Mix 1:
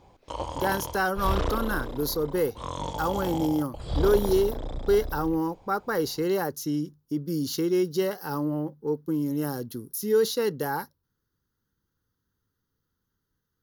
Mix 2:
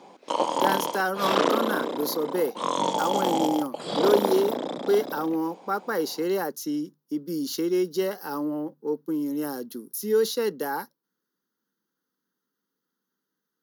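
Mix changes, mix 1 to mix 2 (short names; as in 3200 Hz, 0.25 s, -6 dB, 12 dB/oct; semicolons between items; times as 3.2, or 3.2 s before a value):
background +9.0 dB; master: add steep high-pass 190 Hz 36 dB/oct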